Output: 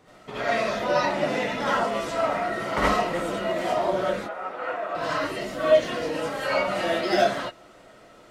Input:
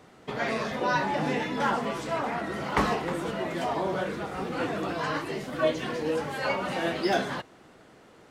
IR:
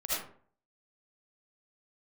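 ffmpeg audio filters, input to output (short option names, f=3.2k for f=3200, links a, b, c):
-filter_complex "[0:a]asettb=1/sr,asplit=3[a][b][c];[a]atrim=end=4.194[d];[b]atrim=start=4.19:end=4.95,asetpts=PTS-STARTPTS,afade=t=in:d=0.004:c=qsin,afade=t=out:st=0.756:d=0.004:c=qsin,acrossover=split=480 2200:gain=0.0891 1 0.141[e][f][g];[e][f][g]amix=inputs=3:normalize=0[h];[c]atrim=start=4.946[i];[d][h]acrossfade=d=0.004:c1=hsin:c2=qsin[j];[j][i]acrossfade=d=0.004:c1=qsin:c2=hsin[k];[1:a]atrim=start_sample=2205,atrim=end_sample=4410[l];[k][l]afir=irnorm=-1:irlink=0"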